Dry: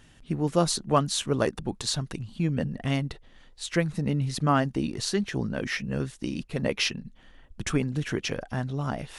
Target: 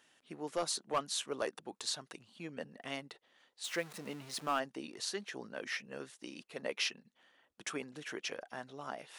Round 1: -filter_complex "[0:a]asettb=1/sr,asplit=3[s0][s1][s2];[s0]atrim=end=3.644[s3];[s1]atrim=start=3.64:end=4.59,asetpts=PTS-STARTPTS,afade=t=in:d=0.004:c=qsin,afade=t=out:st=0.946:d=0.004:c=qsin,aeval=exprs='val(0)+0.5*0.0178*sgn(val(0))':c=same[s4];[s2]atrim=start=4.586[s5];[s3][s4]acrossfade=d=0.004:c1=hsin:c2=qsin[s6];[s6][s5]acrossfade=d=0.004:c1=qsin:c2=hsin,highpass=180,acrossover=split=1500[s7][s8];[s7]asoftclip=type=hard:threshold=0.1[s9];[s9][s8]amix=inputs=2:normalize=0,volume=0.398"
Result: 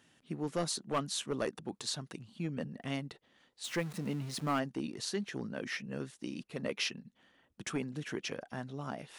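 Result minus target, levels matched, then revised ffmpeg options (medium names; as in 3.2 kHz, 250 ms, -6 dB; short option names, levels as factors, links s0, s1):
250 Hz band +6.5 dB
-filter_complex "[0:a]asettb=1/sr,asplit=3[s0][s1][s2];[s0]atrim=end=3.644[s3];[s1]atrim=start=3.64:end=4.59,asetpts=PTS-STARTPTS,afade=t=in:d=0.004:c=qsin,afade=t=out:st=0.946:d=0.004:c=qsin,aeval=exprs='val(0)+0.5*0.0178*sgn(val(0))':c=same[s4];[s2]atrim=start=4.586[s5];[s3][s4]acrossfade=d=0.004:c1=hsin:c2=qsin[s6];[s6][s5]acrossfade=d=0.004:c1=qsin:c2=hsin,highpass=450,acrossover=split=1500[s7][s8];[s7]asoftclip=type=hard:threshold=0.1[s9];[s9][s8]amix=inputs=2:normalize=0,volume=0.398"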